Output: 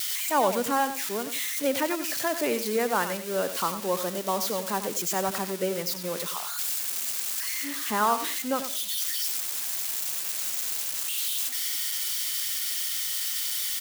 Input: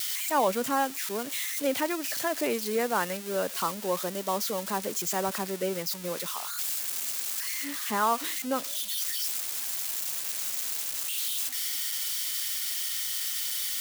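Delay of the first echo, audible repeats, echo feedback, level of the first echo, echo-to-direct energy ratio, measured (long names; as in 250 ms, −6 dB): 93 ms, 2, 20%, −10.5 dB, −10.5 dB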